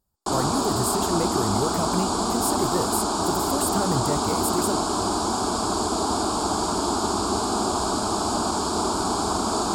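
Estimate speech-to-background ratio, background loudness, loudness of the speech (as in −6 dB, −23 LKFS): −4.5 dB, −24.0 LKFS, −28.5 LKFS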